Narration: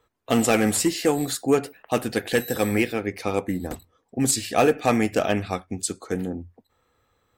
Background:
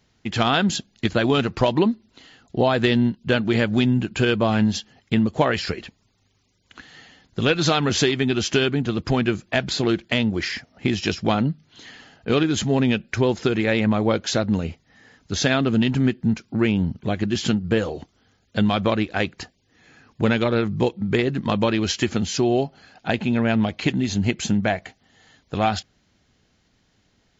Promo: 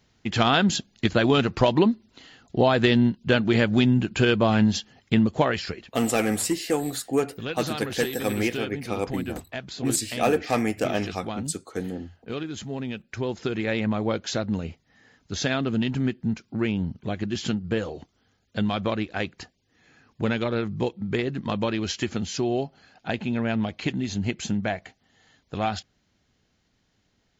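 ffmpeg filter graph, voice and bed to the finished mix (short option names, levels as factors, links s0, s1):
-filter_complex "[0:a]adelay=5650,volume=0.668[s0];[1:a]volume=2.11,afade=t=out:st=5.22:d=0.78:silence=0.251189,afade=t=in:st=12.93:d=0.76:silence=0.446684[s1];[s0][s1]amix=inputs=2:normalize=0"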